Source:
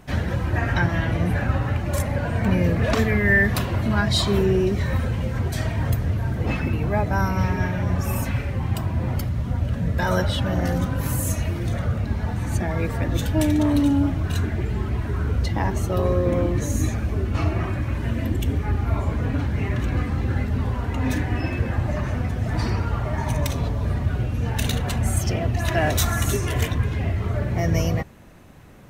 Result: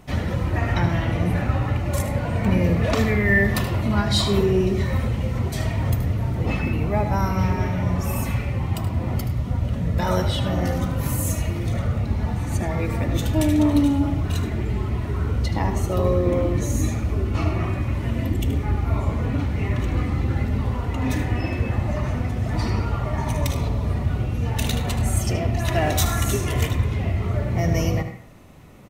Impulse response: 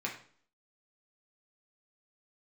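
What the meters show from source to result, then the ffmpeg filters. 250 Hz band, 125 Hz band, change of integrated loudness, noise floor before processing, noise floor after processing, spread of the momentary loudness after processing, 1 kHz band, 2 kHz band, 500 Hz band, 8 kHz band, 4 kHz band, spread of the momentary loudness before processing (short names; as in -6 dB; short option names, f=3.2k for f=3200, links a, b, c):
+0.5 dB, +0.5 dB, +0.5 dB, -29 dBFS, -28 dBFS, 5 LU, +0.5 dB, -2.0 dB, +0.5 dB, +0.5 dB, +0.5 dB, 5 LU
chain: -filter_complex "[0:a]bandreject=f=1.6k:w=6.6,aecho=1:1:76:0.266,asplit=2[a][b];[1:a]atrim=start_sample=2205,adelay=101[c];[b][c]afir=irnorm=-1:irlink=0,volume=-14dB[d];[a][d]amix=inputs=2:normalize=0"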